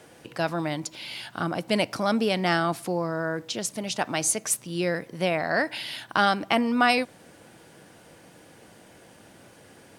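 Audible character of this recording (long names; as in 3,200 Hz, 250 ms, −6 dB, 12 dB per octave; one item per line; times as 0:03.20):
background noise floor −53 dBFS
spectral slope −3.5 dB per octave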